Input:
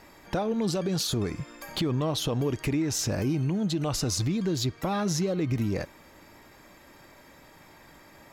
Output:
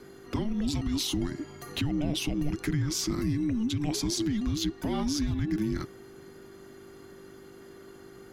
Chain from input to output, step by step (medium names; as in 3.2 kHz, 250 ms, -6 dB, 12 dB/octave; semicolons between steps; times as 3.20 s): hum 50 Hz, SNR 19 dB; frequency shift -440 Hz; trim -1.5 dB